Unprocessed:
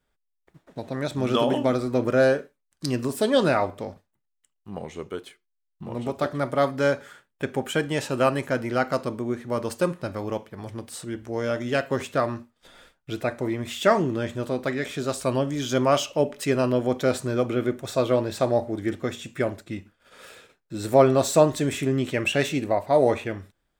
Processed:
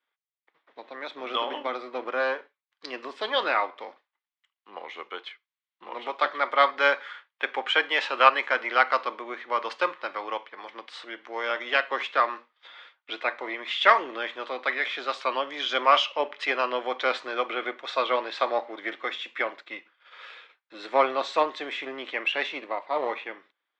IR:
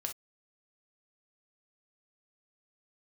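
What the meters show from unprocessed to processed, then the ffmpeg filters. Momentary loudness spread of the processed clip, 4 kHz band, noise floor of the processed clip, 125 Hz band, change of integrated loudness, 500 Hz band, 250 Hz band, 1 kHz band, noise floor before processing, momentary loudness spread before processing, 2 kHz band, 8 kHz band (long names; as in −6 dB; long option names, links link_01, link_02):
20 LU, +4.0 dB, below −85 dBFS, below −35 dB, −1.5 dB, −7.0 dB, −15.5 dB, +3.5 dB, −77 dBFS, 16 LU, +5.5 dB, below −15 dB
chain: -filter_complex "[0:a]acrossover=split=620[link_01][link_02];[link_01]aeval=exprs='max(val(0),0)':channel_layout=same[link_03];[link_02]dynaudnorm=framelen=500:gausssize=17:maxgain=11dB[link_04];[link_03][link_04]amix=inputs=2:normalize=0,aeval=exprs='0.841*(cos(1*acos(clip(val(0)/0.841,-1,1)))-cos(1*PI/2))+0.0841*(cos(3*acos(clip(val(0)/0.841,-1,1)))-cos(3*PI/2))':channel_layout=same,highpass=frequency=340:width=0.5412,highpass=frequency=340:width=1.3066,equalizer=frequency=400:width_type=q:width=4:gain=-4,equalizer=frequency=640:width_type=q:width=4:gain=-6,equalizer=frequency=1100:width_type=q:width=4:gain=5,equalizer=frequency=2100:width_type=q:width=4:gain=6,equalizer=frequency=3300:width_type=q:width=4:gain=4,lowpass=frequency=4100:width=0.5412,lowpass=frequency=4100:width=1.3066,volume=-1dB"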